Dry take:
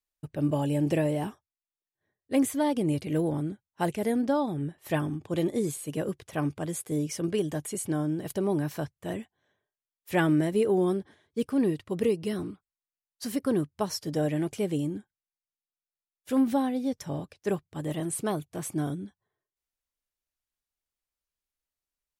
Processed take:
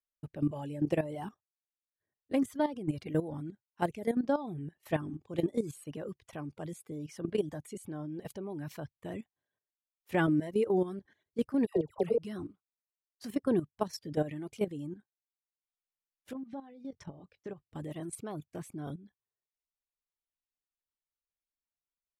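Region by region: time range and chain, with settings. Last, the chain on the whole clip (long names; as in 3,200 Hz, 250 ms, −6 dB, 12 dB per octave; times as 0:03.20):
0:11.66–0:12.18: flat-topped bell 600 Hz +11.5 dB 1.3 octaves + downward compressor 2.5 to 1, threshold −19 dBFS + all-pass dispersion lows, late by 104 ms, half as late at 1,300 Hz
0:16.33–0:17.66: downward compressor 8 to 1, threshold −35 dBFS + high-frequency loss of the air 86 metres + double-tracking delay 22 ms −14 dB
whole clip: reverb reduction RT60 0.78 s; high-shelf EQ 4,100 Hz −8.5 dB; output level in coarse steps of 13 dB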